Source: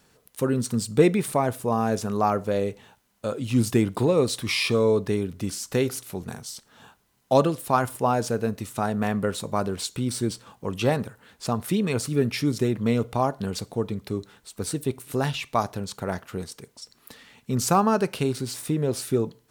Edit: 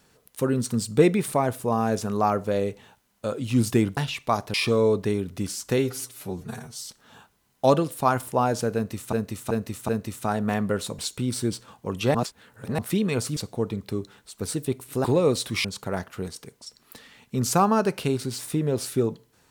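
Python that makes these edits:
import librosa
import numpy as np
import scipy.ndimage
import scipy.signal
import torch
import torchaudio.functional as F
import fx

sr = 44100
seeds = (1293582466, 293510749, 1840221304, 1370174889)

y = fx.edit(x, sr, fx.swap(start_s=3.97, length_s=0.6, other_s=15.23, other_length_s=0.57),
    fx.stretch_span(start_s=5.81, length_s=0.71, factor=1.5),
    fx.repeat(start_s=8.42, length_s=0.38, count=4),
    fx.cut(start_s=9.52, length_s=0.25),
    fx.reverse_span(start_s=10.93, length_s=0.64),
    fx.cut(start_s=12.15, length_s=1.4), tone=tone)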